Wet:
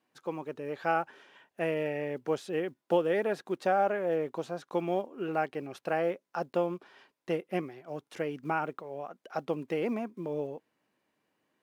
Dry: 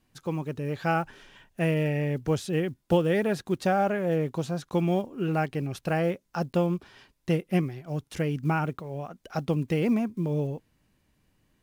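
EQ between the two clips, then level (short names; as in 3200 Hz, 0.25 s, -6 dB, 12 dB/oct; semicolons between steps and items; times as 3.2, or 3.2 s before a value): HPF 390 Hz 12 dB/oct; high shelf 2900 Hz -11.5 dB; 0.0 dB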